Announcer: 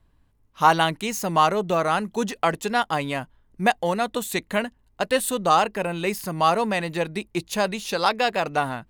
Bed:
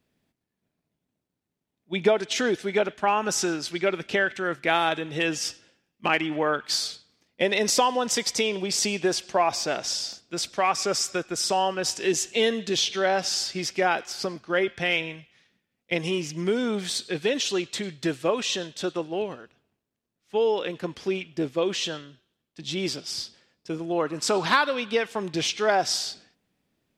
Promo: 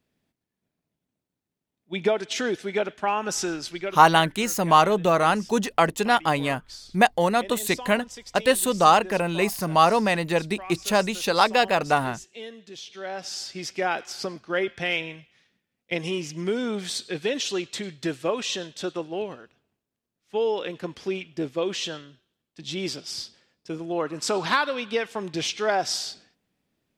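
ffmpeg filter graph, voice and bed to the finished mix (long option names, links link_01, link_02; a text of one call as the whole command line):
ffmpeg -i stem1.wav -i stem2.wav -filter_complex "[0:a]adelay=3350,volume=2dB[link_01];[1:a]volume=13dB,afade=type=out:start_time=3.66:duration=0.4:silence=0.188365,afade=type=in:start_time=12.84:duration=1.2:silence=0.177828[link_02];[link_01][link_02]amix=inputs=2:normalize=0" out.wav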